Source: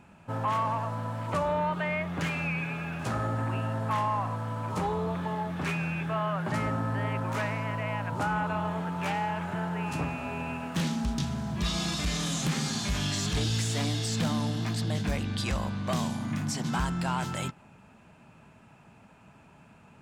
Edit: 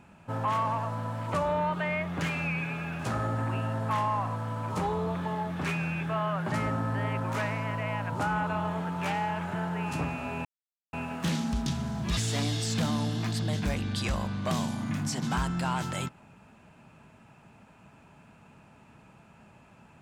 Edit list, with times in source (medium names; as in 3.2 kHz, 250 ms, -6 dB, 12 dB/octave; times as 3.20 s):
10.45 s: insert silence 0.48 s
11.69–13.59 s: delete